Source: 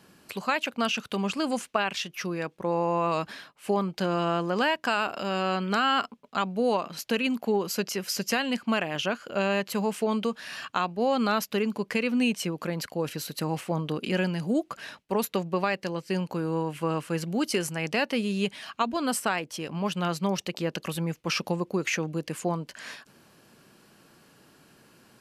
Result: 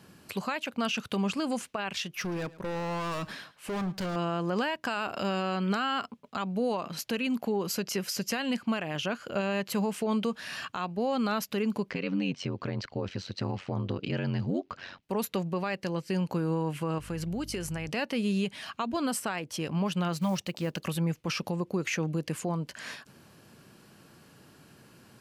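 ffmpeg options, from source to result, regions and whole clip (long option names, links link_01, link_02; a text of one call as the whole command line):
ffmpeg -i in.wav -filter_complex "[0:a]asettb=1/sr,asplit=3[link_01][link_02][link_03];[link_01]atrim=end=2.214[link_04];[link_02]atrim=start=2.21:end=4.16,asetpts=PTS-STARTPTS,afade=type=in:duration=0.004:curve=qsin,afade=type=out:start_time=1.946:duration=0.004:curve=qsin,asoftclip=type=hard:threshold=-32dB,aecho=1:1:109:0.112,atrim=end_sample=85995[link_05];[link_03]atrim=start=4.156[link_06];[link_04][link_05]acrossfade=duration=0.004:curve1=hsin:curve2=qsin[link_07];[link_07][link_06]acrossfade=duration=0.004:curve1=qsin:curve2=hsin,asettb=1/sr,asplit=3[link_08][link_09][link_10];[link_08]atrim=end=11.904[link_11];[link_09]atrim=start=11.9:end=15.03,asetpts=PTS-STARTPTS,afade=type=in:duration=0.004:curve=qsin,afade=type=out:start_time=3.126:duration=0.004:curve=qsin,lowpass=frequency=5400:width=0.5412,lowpass=frequency=5400:width=1.3066,aeval=exprs='val(0)*sin(2*PI*46*n/s)':channel_layout=same[link_12];[link_10]atrim=start=15.026[link_13];[link_11][link_12]acrossfade=duration=0.004:curve1=hsin:curve2=qsin[link_14];[link_14][link_13]acrossfade=duration=0.004:curve1=qsin:curve2=hsin,asettb=1/sr,asplit=3[link_15][link_16][link_17];[link_15]atrim=end=16.984[link_18];[link_16]atrim=start=16.98:end=17.89,asetpts=PTS-STARTPTS,afade=type=in:duration=0.004:curve=qsin,afade=type=out:start_time=0.906:duration=0.004:curve=qsin,acompressor=threshold=-34dB:ratio=3:attack=3.2:release=140:knee=1:detection=peak,aeval=exprs='val(0)+0.00355*(sin(2*PI*50*n/s)+sin(2*PI*2*50*n/s)/2+sin(2*PI*3*50*n/s)/3+sin(2*PI*4*50*n/s)/4+sin(2*PI*5*50*n/s)/5)':channel_layout=same[link_19];[link_17]atrim=start=17.886[link_20];[link_18][link_19]acrossfade=duration=0.004:curve1=hsin:curve2=qsin[link_21];[link_21][link_20]acrossfade=duration=0.004:curve1=qsin:curve2=hsin,asettb=1/sr,asplit=3[link_22][link_23][link_24];[link_22]atrim=end=20.134[link_25];[link_23]atrim=start=20.13:end=20.87,asetpts=PTS-STARTPTS,afade=type=in:duration=0.004:curve=qsin,afade=type=out:start_time=0.736:duration=0.004:curve=qsin,bandreject=frequency=400:width=5.6,acrusher=bits=6:mode=log:mix=0:aa=0.000001[link_26];[link_24]atrim=start=20.866[link_27];[link_25][link_26]acrossfade=duration=0.004:curve1=hsin:curve2=qsin[link_28];[link_28][link_27]acrossfade=duration=0.004:curve1=qsin:curve2=hsin,equalizer=frequency=97:width=0.76:gain=7,alimiter=limit=-21dB:level=0:latency=1:release=145" out.wav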